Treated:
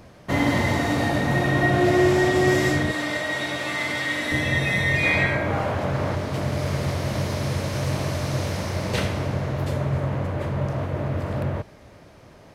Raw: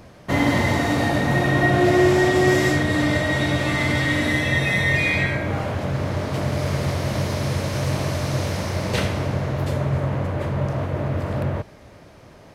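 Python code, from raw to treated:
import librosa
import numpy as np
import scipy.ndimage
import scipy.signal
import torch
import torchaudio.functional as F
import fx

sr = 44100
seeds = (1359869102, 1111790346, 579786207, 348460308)

y = fx.highpass(x, sr, hz=600.0, slope=6, at=(2.91, 4.32))
y = fx.peak_eq(y, sr, hz=930.0, db=5.5, octaves=2.4, at=(5.03, 6.15))
y = y * librosa.db_to_amplitude(-2.0)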